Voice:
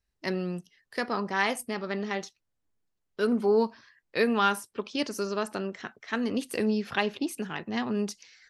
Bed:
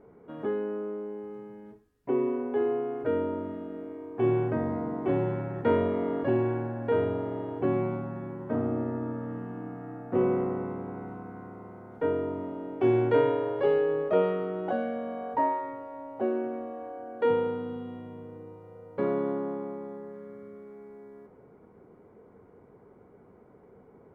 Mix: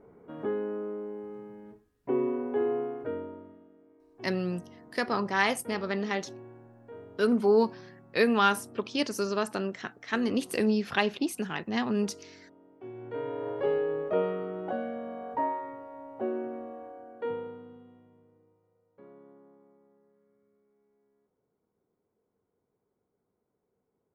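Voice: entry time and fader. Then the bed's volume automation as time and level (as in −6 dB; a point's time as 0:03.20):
4.00 s, +1.0 dB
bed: 0:02.83 −1 dB
0:03.77 −20.5 dB
0:12.94 −20.5 dB
0:13.49 −3.5 dB
0:16.73 −3.5 dB
0:18.85 −25 dB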